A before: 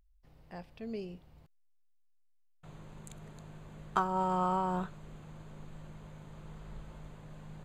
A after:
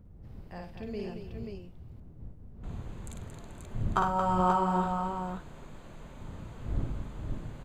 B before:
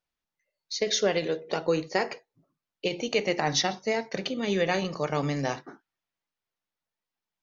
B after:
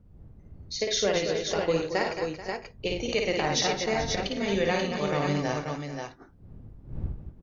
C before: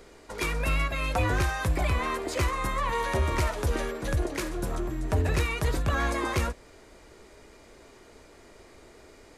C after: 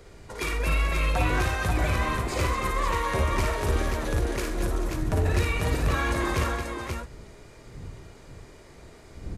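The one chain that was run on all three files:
wind noise 110 Hz -44 dBFS; tapped delay 55/100/227/435/508/534 ms -3.5/-13.5/-8/-15/-15.5/-5 dB; normalise peaks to -12 dBFS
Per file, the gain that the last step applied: +1.5, -2.0, -1.5 dB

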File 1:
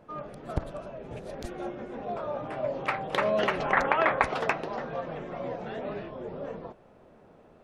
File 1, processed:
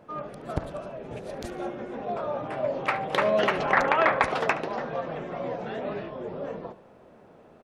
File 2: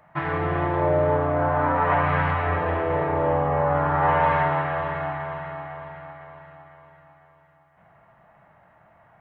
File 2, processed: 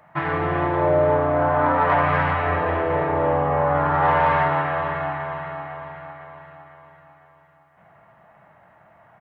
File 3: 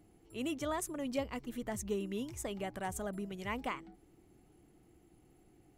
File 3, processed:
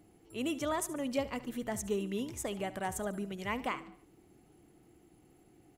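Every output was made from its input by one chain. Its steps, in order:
low shelf 60 Hz -10 dB; soft clip -9 dBFS; on a send: feedback echo 72 ms, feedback 46%, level -16.5 dB; on the sum: gain +3 dB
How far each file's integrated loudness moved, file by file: +2.5, +2.0, +2.5 LU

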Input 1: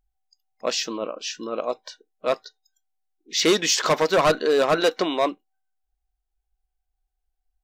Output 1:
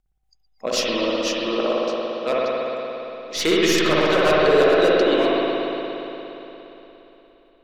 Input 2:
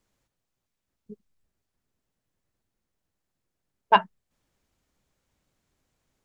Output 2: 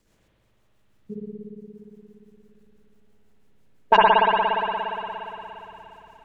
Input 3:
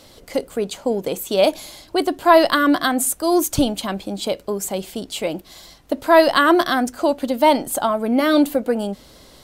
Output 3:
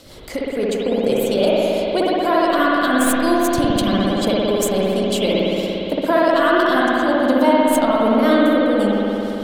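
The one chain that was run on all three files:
tracing distortion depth 0.022 ms; compressor 6:1, threshold -21 dBFS; transient shaper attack -2 dB, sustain -8 dB; rotary speaker horn 6 Hz; spring tank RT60 3.6 s, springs 58 ms, chirp 75 ms, DRR -6.5 dB; normalise peaks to -3 dBFS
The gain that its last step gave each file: +4.5, +11.5, +5.5 dB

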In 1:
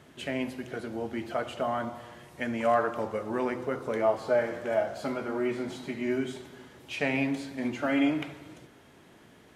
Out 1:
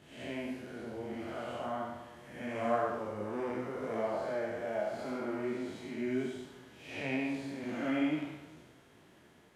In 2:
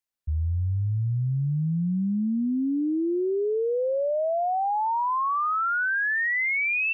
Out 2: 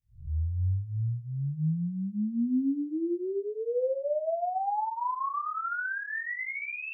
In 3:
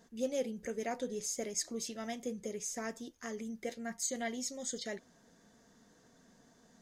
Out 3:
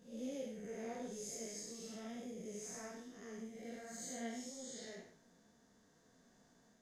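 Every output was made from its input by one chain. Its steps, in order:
time blur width 0.21 s; detuned doubles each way 27 cents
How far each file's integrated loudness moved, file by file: -6.0, -6.0, -8.0 LU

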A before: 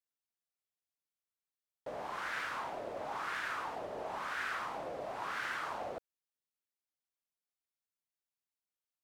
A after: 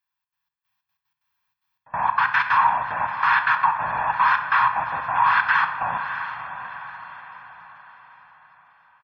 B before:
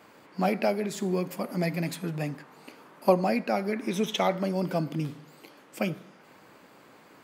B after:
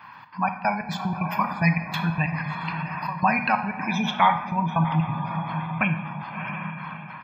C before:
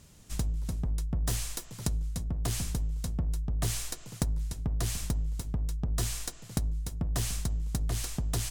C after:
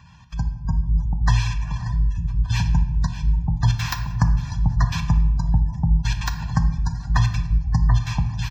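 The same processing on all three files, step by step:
step gate "xxx.xx..xx.x.x.x" 186 bpm -24 dB; HPF 57 Hz 12 dB/oct; high shelf 4500 Hz -6.5 dB; comb 1.2 ms, depth 47%; on a send: diffused feedback echo 0.654 s, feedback 45%, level -12 dB; on the sum: spectral gate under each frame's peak -30 dB strong; in parallel at +2.5 dB: compressor, threshold -39 dBFS; on the sum: EQ curve 120 Hz 0 dB, 240 Hz -7 dB, 380 Hz -17 dB, 640 Hz -12 dB, 1000 Hz +11 dB, 1500 Hz +5 dB, 2500 Hz +4 dB, 5700 Hz -2 dB, 10000 Hz -28 dB, 16000 Hz +10 dB; AGC gain up to 8.5 dB; shoebox room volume 450 m³, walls mixed, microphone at 0.56 m; normalise peaks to -6 dBFS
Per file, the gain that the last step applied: +0.5, -2.5, 0.0 dB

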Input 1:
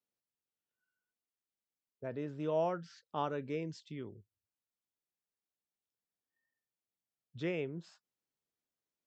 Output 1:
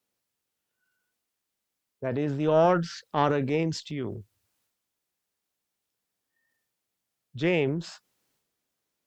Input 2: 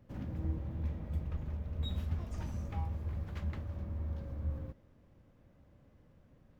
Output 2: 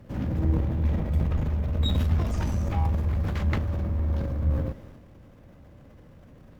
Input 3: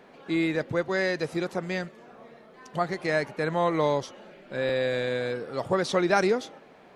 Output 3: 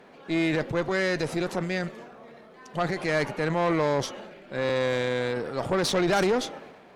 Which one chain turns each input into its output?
transient shaper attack -1 dB, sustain +7 dB; added harmonics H 5 -18 dB, 8 -19 dB, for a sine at -9 dBFS; match loudness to -27 LUFS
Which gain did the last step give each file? +7.0, +7.5, -3.5 dB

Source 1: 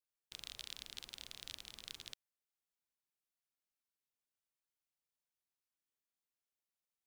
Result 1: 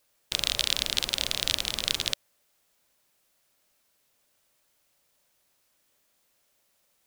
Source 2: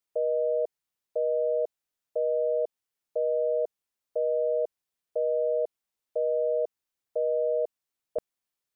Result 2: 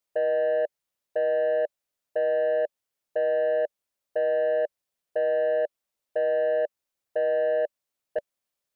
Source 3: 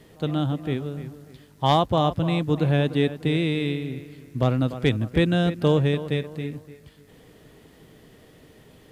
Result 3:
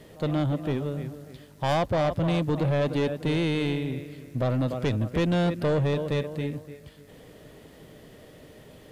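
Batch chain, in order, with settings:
bell 580 Hz +7.5 dB 0.29 oct; in parallel at +1 dB: limiter -15 dBFS; on the sum: soft clip -14.5 dBFS; match loudness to -27 LUFS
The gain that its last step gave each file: +16.0, -5.0, -5.0 dB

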